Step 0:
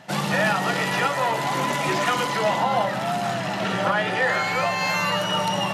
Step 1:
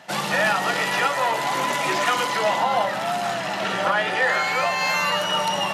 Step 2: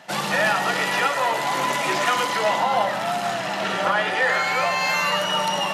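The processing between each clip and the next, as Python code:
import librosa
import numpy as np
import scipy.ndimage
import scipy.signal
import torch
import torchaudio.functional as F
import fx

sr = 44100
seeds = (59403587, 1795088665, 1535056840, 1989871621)

y1 = fx.highpass(x, sr, hz=430.0, slope=6)
y1 = y1 * 10.0 ** (2.0 / 20.0)
y2 = fx.hum_notches(y1, sr, base_hz=60, count=2)
y2 = y2 + 10.0 ** (-12.0 / 20.0) * np.pad(y2, (int(101 * sr / 1000.0), 0))[:len(y2)]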